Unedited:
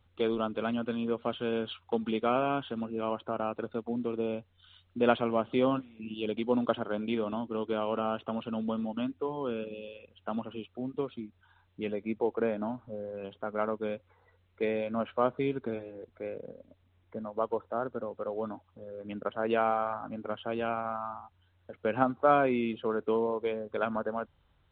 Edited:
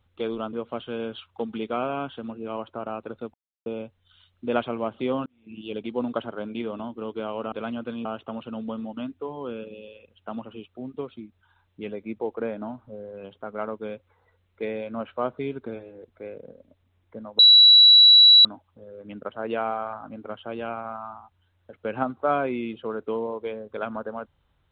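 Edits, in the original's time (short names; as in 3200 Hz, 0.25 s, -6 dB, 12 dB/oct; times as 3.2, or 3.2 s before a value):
0.53–1.06 move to 8.05
3.87–4.19 mute
5.79–6.11 fade in
17.39–18.45 bleep 3920 Hz -9 dBFS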